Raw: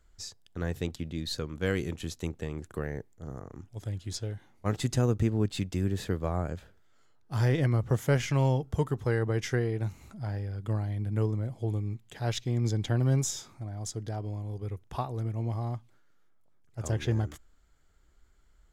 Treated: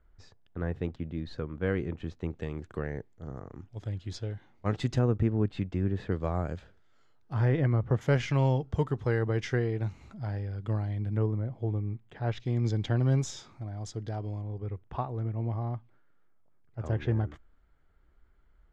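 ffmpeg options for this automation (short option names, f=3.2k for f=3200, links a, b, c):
-af "asetnsamples=n=441:p=0,asendcmd='2.31 lowpass f 3900;4.99 lowpass f 2100;6.12 lowpass f 5200;7.33 lowpass f 2100;8.01 lowpass f 4400;11.17 lowpass f 2000;12.4 lowpass f 4400;14.42 lowpass f 2200',lowpass=1.8k"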